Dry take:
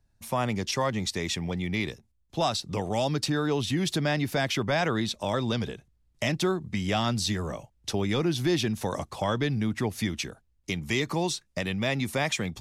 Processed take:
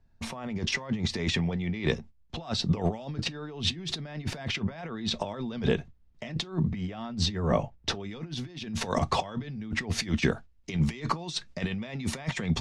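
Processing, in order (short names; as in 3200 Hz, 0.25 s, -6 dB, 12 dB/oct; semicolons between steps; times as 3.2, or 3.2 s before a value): gate -54 dBFS, range -10 dB; high shelf 2800 Hz -3 dB, from 6.7 s -9.5 dB, from 8 s +2.5 dB; negative-ratio compressor -35 dBFS, ratio -0.5; air absorption 120 m; reverb, pre-delay 4 ms, DRR 9.5 dB; gain +6 dB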